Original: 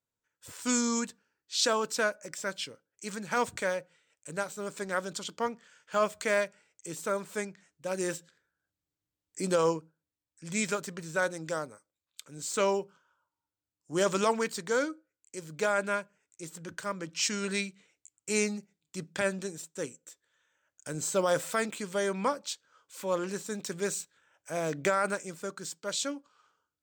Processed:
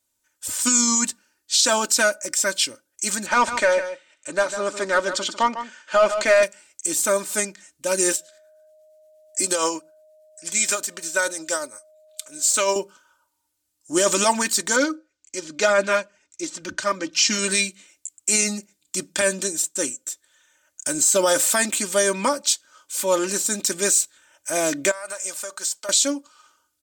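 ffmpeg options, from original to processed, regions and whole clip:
ffmpeg -i in.wav -filter_complex "[0:a]asettb=1/sr,asplit=3[link_01][link_02][link_03];[link_01]atrim=end=3.264[link_04];[link_02]atrim=start=3.26:end=6.43,asetpts=PTS-STARTPTS,afade=type=in:duration=0.004:curve=qsin,afade=type=out:start_time=3.166:duration=0.004:curve=qsin,lowpass=7300,asplit=2[link_05][link_06];[link_06]highpass=frequency=720:poles=1,volume=13dB,asoftclip=type=tanh:threshold=-15dB[link_07];[link_05][link_07]amix=inputs=2:normalize=0,lowpass=frequency=1300:poles=1,volume=-6dB,aecho=1:1:150:0.282,atrim=end_sample=139797[link_08];[link_03]atrim=start=6.426[link_09];[link_04][link_08]acrossfade=duration=0.004:curve1=hsin:curve2=qsin[link_10];[link_10][link_09]acrossfade=duration=0.004:curve1=qsin:curve2=hsin,asettb=1/sr,asplit=3[link_11][link_12][link_13];[link_11]atrim=end=8.124[link_14];[link_12]atrim=start=8.12:end=12.76,asetpts=PTS-STARTPTS,afade=type=in:duration=0.004:curve=qsin,afade=type=out:start_time=4.636:duration=0.004:curve=qsin,lowshelf=frequency=270:gain=-11.5,tremolo=f=8.5:d=0.46,aeval=exprs='val(0)+0.000708*sin(2*PI*620*n/s)':channel_layout=same[link_15];[link_13]atrim=start=12.756[link_16];[link_14][link_15]acrossfade=duration=0.004:curve1=hsin:curve2=qsin[link_17];[link_17][link_16]acrossfade=duration=0.004:curve1=qsin:curve2=hsin,asettb=1/sr,asplit=3[link_18][link_19][link_20];[link_18]atrim=end=14.764[link_21];[link_19]atrim=start=14.76:end=17.39,asetpts=PTS-STARTPTS,afade=type=in:duration=0.004:curve=qsin,afade=type=out:start_time=2.626:duration=0.004:curve=qsin,lowpass=frequency=6100:width=0.5412,lowpass=frequency=6100:width=1.3066,aphaser=in_gain=1:out_gain=1:delay=3.8:decay=0.36:speed=2:type=sinusoidal[link_22];[link_20]atrim=start=17.386[link_23];[link_21][link_22]acrossfade=duration=0.004:curve1=hsin:curve2=qsin[link_24];[link_24][link_23]acrossfade=duration=0.004:curve1=qsin:curve2=hsin,asettb=1/sr,asplit=3[link_25][link_26][link_27];[link_25]atrim=end=24.914[link_28];[link_26]atrim=start=24.91:end=25.89,asetpts=PTS-STARTPTS,afade=type=in:duration=0.004:curve=qsin,afade=type=out:start_time=0.976:duration=0.004:curve=qsin,lowshelf=frequency=430:width_type=q:width=1.5:gain=-13,acompressor=threshold=-40dB:ratio=6:attack=3.2:release=140:knee=1:detection=peak[link_29];[link_27]atrim=start=25.886[link_30];[link_28][link_29]acrossfade=duration=0.004:curve1=hsin:curve2=qsin[link_31];[link_31][link_30]acrossfade=duration=0.004:curve1=qsin:curve2=hsin,equalizer=frequency=10000:width=0.39:gain=13.5,aecho=1:1:3.3:0.72,alimiter=level_in=14dB:limit=-1dB:release=50:level=0:latency=1,volume=-7dB" out.wav

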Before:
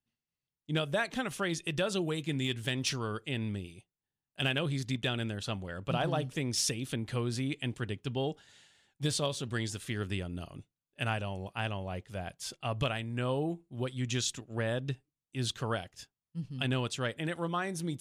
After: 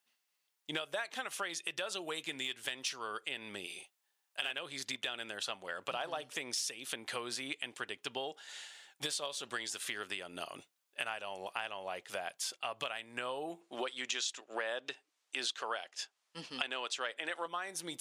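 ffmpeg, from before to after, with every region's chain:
ffmpeg -i in.wav -filter_complex "[0:a]asettb=1/sr,asplit=3[link_01][link_02][link_03];[link_01]atrim=end=3.664[link_04];[link_02]atrim=start=3.66:end=4.51,asetpts=PTS-STARTPTS,afade=type=in:duration=0.004:curve=qsin,afade=type=out:start_time=0.846:duration=0.004:curve=qsin,highpass=61,lowshelf=frequency=220:gain=-9,asplit=2[link_05][link_06];[link_06]adelay=40,volume=-5dB[link_07];[link_05][link_07]amix=inputs=2:normalize=0,atrim=end_sample=37485[link_08];[link_03]atrim=start=4.506[link_09];[link_04][link_08]acrossfade=duration=0.004:curve1=hsin:curve2=qsin[link_10];[link_10][link_09]acrossfade=duration=0.004:curve1=qsin:curve2=hsin,asettb=1/sr,asplit=3[link_11][link_12][link_13];[link_11]atrim=end=13.614[link_14];[link_12]atrim=start=13.61:end=17.46,asetpts=PTS-STARTPTS,afade=type=in:duration=0.004:curve=qsin,afade=type=out:start_time=3.846:duration=0.004:curve=qsin,highpass=290,lowpass=7400,acontrast=59[link_15];[link_13]atrim=start=17.456[link_16];[link_14][link_15]acrossfade=duration=0.004:curve1=hsin:curve2=qsin[link_17];[link_17][link_16]acrossfade=duration=0.004:curve1=qsin:curve2=hsin,highpass=670,acompressor=threshold=-49dB:ratio=5,volume=12dB" out.wav

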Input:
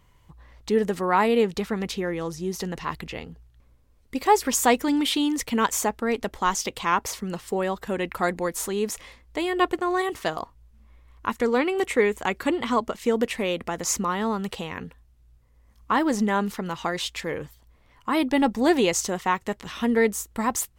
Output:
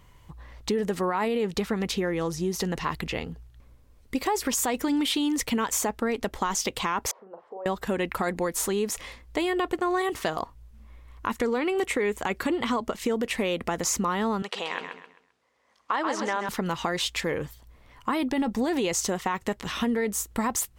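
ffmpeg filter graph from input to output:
ffmpeg -i in.wav -filter_complex "[0:a]asettb=1/sr,asplit=3[link_01][link_02][link_03];[link_01]atrim=end=7.114[link_04];[link_02]atrim=start=7.11:end=7.66,asetpts=PTS-STARTPTS,afade=type=in:duration=0.004:curve=qsin,afade=type=out:start_time=0.546:duration=0.004:curve=qsin,acompressor=threshold=-39dB:ratio=4:attack=3.2:release=140:knee=1:detection=peak,asuperpass=centerf=650:order=4:qfactor=1.2,asplit=2[link_05][link_06];[link_06]adelay=41,volume=-7.5dB[link_07];[link_05][link_07]amix=inputs=2:normalize=0,atrim=end_sample=24255[link_08];[link_03]atrim=start=7.656[link_09];[link_04][link_08]acrossfade=duration=0.004:curve1=hsin:curve2=qsin[link_10];[link_10][link_09]acrossfade=duration=0.004:curve1=qsin:curve2=hsin,asettb=1/sr,asplit=3[link_11][link_12][link_13];[link_11]atrim=end=14.424[link_14];[link_12]atrim=start=14.42:end=16.49,asetpts=PTS-STARTPTS,afade=type=in:duration=0.004:curve=qsin,afade=type=out:start_time=2.066:duration=0.004:curve=qsin,highpass=510,lowpass=6100,aecho=1:1:131|262|393|524:0.422|0.135|0.0432|0.0138,atrim=end_sample=91287[link_15];[link_13]atrim=start=16.486[link_16];[link_14][link_15]acrossfade=duration=0.004:curve1=hsin:curve2=qsin[link_17];[link_17][link_16]acrossfade=duration=0.004:curve1=qsin:curve2=hsin,alimiter=limit=-16.5dB:level=0:latency=1:release=20,acompressor=threshold=-29dB:ratio=3,volume=4.5dB" out.wav

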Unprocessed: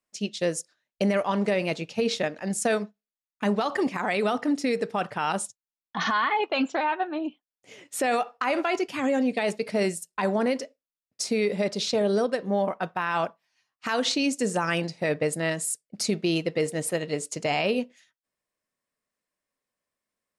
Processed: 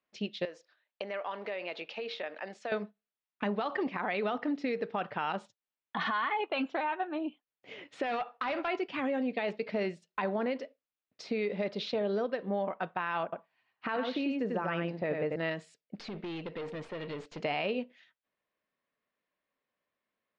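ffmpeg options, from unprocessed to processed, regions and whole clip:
ffmpeg -i in.wav -filter_complex "[0:a]asettb=1/sr,asplit=3[link_01][link_02][link_03];[link_01]atrim=end=0.454[link_04];[link_02]atrim=start=0.45:end=2.72,asetpts=PTS-STARTPTS,afade=type=in:duration=0.004:curve=qsin,afade=type=out:start_time=2.266:duration=0.004:curve=qsin,acompressor=threshold=-31dB:ratio=3:attack=3.2:release=140:knee=1:detection=peak,highpass=490,lowpass=7800[link_05];[link_03]atrim=start=2.716[link_06];[link_04][link_05]acrossfade=duration=0.004:curve1=hsin:curve2=qsin[link_07];[link_07][link_06]acrossfade=duration=0.004:curve1=qsin:curve2=hsin,asettb=1/sr,asplit=3[link_08][link_09][link_10];[link_08]atrim=end=8.034[link_11];[link_09]atrim=start=8.03:end=8.68,asetpts=PTS-STARTPTS,afade=type=in:duration=0.004:curve=qsin,afade=type=out:start_time=0.646:duration=0.004:curve=qsin,equalizer=frequency=390:width_type=o:width=0.64:gain=-6.5,asoftclip=type=hard:threshold=-24dB[link_12];[link_10]atrim=start=8.676[link_13];[link_11][link_12]acrossfade=duration=0.004:curve1=hsin:curve2=qsin[link_14];[link_14][link_13]acrossfade=duration=0.004:curve1=qsin:curve2=hsin,asettb=1/sr,asplit=3[link_15][link_16][link_17];[link_15]atrim=end=13.234[link_18];[link_16]atrim=start=13.23:end=15.36,asetpts=PTS-STARTPTS,afade=type=in:duration=0.004:curve=qsin,afade=type=out:start_time=2.126:duration=0.004:curve=qsin,lowpass=frequency=1500:poles=1,aecho=1:1:94:0.668,atrim=end_sample=93933[link_19];[link_17]atrim=start=15.356[link_20];[link_18][link_19]acrossfade=duration=0.004:curve1=hsin:curve2=qsin[link_21];[link_21][link_20]acrossfade=duration=0.004:curve1=qsin:curve2=hsin,asettb=1/sr,asplit=3[link_22][link_23][link_24];[link_22]atrim=end=15.954[link_25];[link_23]atrim=start=15.95:end=17.42,asetpts=PTS-STARTPTS,afade=type=in:duration=0.004:curve=qsin,afade=type=out:start_time=1.466:duration=0.004:curve=qsin,acompressor=threshold=-28dB:ratio=6:attack=3.2:release=140:knee=1:detection=peak,aeval=exprs='(tanh(56.2*val(0)+0.4)-tanh(0.4))/56.2':channel_layout=same[link_26];[link_24]atrim=start=17.416[link_27];[link_25][link_26]acrossfade=duration=0.004:curve1=hsin:curve2=qsin[link_28];[link_28][link_27]acrossfade=duration=0.004:curve1=qsin:curve2=hsin,lowshelf=frequency=100:gain=-10.5,acompressor=threshold=-38dB:ratio=2,lowpass=frequency=3700:width=0.5412,lowpass=frequency=3700:width=1.3066,volume=2dB" out.wav

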